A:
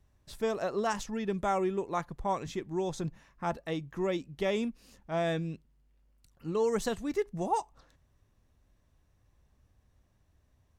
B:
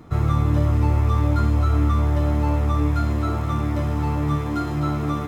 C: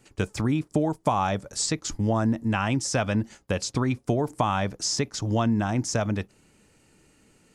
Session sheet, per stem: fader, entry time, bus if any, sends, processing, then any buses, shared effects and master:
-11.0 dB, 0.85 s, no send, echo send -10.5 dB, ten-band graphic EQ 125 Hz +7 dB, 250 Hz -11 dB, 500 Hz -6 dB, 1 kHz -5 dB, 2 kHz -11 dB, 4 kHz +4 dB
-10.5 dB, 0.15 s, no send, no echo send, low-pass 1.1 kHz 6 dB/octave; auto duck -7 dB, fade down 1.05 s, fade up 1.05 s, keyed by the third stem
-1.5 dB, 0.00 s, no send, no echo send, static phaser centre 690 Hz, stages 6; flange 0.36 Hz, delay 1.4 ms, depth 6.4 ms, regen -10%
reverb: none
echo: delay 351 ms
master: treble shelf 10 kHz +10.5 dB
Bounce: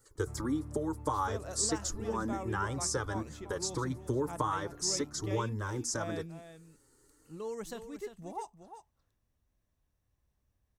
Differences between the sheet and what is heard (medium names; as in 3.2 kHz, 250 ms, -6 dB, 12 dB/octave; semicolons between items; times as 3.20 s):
stem A: missing ten-band graphic EQ 125 Hz +7 dB, 250 Hz -11 dB, 500 Hz -6 dB, 1 kHz -5 dB, 2 kHz -11 dB, 4 kHz +4 dB; stem B -10.5 dB -> -21.0 dB